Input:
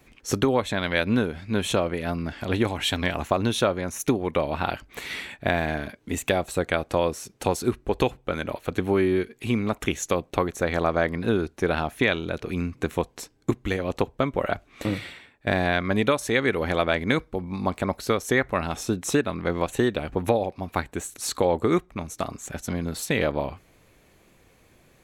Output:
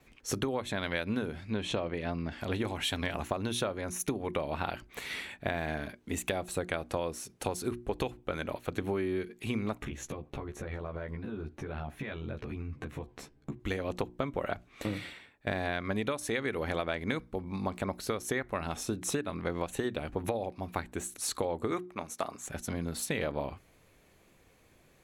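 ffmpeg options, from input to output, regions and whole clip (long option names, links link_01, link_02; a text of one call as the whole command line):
ffmpeg -i in.wav -filter_complex "[0:a]asettb=1/sr,asplit=3[link_01][link_02][link_03];[link_01]atrim=end=1.504[link_04];[link_02]atrim=start=1.5:end=2.32,asetpts=PTS-STARTPTS,afade=type=in:duration=0.004:curve=qsin,afade=type=out:start_time=0.816:duration=0.004:curve=qsin,lowpass=5200,equalizer=frequency=1400:width=7.1:gain=-4.5[link_05];[link_03]atrim=start=2.316[link_06];[link_04][link_05]acrossfade=duration=0.004:curve1=hsin:curve2=qsin[link_07];[link_07][link_06]acrossfade=duration=0.004:curve1=qsin:curve2=hsin,asettb=1/sr,asplit=3[link_08][link_09][link_10];[link_08]atrim=end=9.804[link_11];[link_09]atrim=start=9.8:end=13.6,asetpts=PTS-STARTPTS,afade=type=in:duration=0.004:curve=qsin,afade=type=out:start_time=3.796:duration=0.004:curve=qsin,bass=frequency=250:gain=7,treble=frequency=4000:gain=-11,acompressor=threshold=-29dB:ratio=16:attack=3.2:release=140:knee=1:detection=peak,asplit=2[link_12][link_13];[link_13]adelay=14,volume=-3dB[link_14];[link_12][link_14]amix=inputs=2:normalize=0,atrim=end_sample=167580[link_15];[link_10]atrim=start=13.596[link_16];[link_11][link_15]acrossfade=duration=0.004:curve1=hsin:curve2=qsin[link_17];[link_17][link_16]acrossfade=duration=0.004:curve1=qsin:curve2=hsin,asettb=1/sr,asplit=3[link_18][link_19][link_20];[link_18]atrim=end=21.714[link_21];[link_19]atrim=start=21.71:end=22.48,asetpts=PTS-STARTPTS,afade=type=in:duration=0.004:curve=qsin,afade=type=out:start_time=0.766:duration=0.004:curve=qsin,highpass=frequency=330:poles=1,equalizer=frequency=860:width_type=o:width=2.1:gain=4[link_22];[link_20]atrim=start=22.476[link_23];[link_21][link_22]acrossfade=duration=0.004:curve1=hsin:curve2=qsin[link_24];[link_24][link_23]acrossfade=duration=0.004:curve1=qsin:curve2=hsin,bandreject=frequency=60:width_type=h:width=6,bandreject=frequency=120:width_type=h:width=6,bandreject=frequency=180:width_type=h:width=6,bandreject=frequency=240:width_type=h:width=6,bandreject=frequency=300:width_type=h:width=6,bandreject=frequency=360:width_type=h:width=6,adynamicequalizer=threshold=0.00158:dfrequency=10000:dqfactor=5.4:tfrequency=10000:tqfactor=5.4:attack=5:release=100:ratio=0.375:range=3:mode=boostabove:tftype=bell,acompressor=threshold=-23dB:ratio=6,volume=-5dB" out.wav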